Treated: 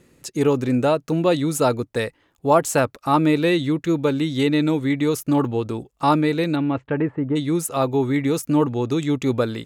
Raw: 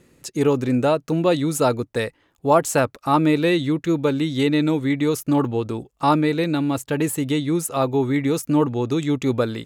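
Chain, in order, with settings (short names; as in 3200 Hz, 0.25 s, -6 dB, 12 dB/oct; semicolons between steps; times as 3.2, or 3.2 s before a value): 6.55–7.35 LPF 3400 Hz -> 1400 Hz 24 dB/oct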